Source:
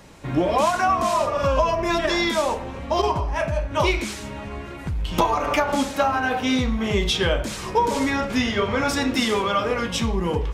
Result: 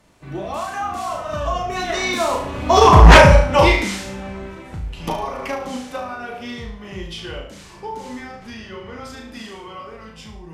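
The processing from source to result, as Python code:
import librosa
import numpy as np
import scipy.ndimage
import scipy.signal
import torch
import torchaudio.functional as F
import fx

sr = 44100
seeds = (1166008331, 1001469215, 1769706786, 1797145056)

y = fx.doppler_pass(x, sr, speed_mps=25, closest_m=1.6, pass_at_s=3.1)
y = fx.room_flutter(y, sr, wall_m=6.2, rt60_s=0.46)
y = fx.fold_sine(y, sr, drive_db=15, ceiling_db=-6.5)
y = y * librosa.db_to_amplitude(5.0)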